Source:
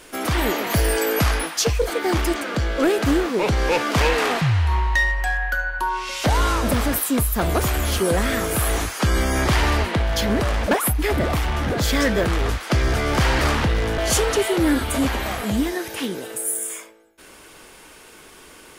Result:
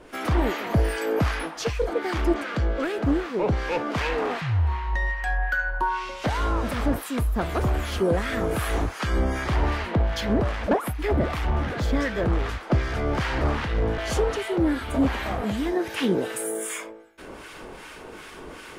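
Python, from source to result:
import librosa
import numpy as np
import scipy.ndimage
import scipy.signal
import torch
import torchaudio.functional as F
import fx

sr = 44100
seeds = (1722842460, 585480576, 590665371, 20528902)

y = fx.lowpass(x, sr, hz=2000.0, slope=6)
y = fx.rider(y, sr, range_db=10, speed_s=0.5)
y = fx.harmonic_tremolo(y, sr, hz=2.6, depth_pct=70, crossover_hz=1100.0)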